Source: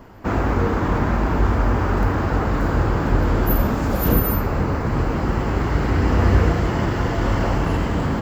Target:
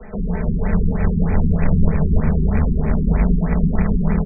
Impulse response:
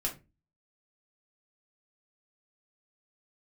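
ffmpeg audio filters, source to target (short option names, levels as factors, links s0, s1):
-filter_complex "[0:a]tremolo=f=35:d=0.462,equalizer=f=240:t=o:w=2.4:g=2.5[s0];[1:a]atrim=start_sample=2205,afade=t=out:st=0.2:d=0.01,atrim=end_sample=9261,asetrate=66150,aresample=44100[s1];[s0][s1]afir=irnorm=-1:irlink=0,asetrate=85113,aresample=44100,acrossover=split=170|1700|2500[s2][s3][s4][s5];[s3]alimiter=limit=0.188:level=0:latency=1:release=117[s6];[s2][s6][s4][s5]amix=inputs=4:normalize=0,aecho=1:1:4.6:0.93,aecho=1:1:320|560|740|875|976.2:0.631|0.398|0.251|0.158|0.1,acrossover=split=190[s7][s8];[s8]acompressor=threshold=0.0126:ratio=2[s9];[s7][s9]amix=inputs=2:normalize=0,acrusher=bits=3:mode=log:mix=0:aa=0.000001,afftfilt=real='re*lt(b*sr/1024,380*pow(2600/380,0.5+0.5*sin(2*PI*3.2*pts/sr)))':imag='im*lt(b*sr/1024,380*pow(2600/380,0.5+0.5*sin(2*PI*3.2*pts/sr)))':win_size=1024:overlap=0.75"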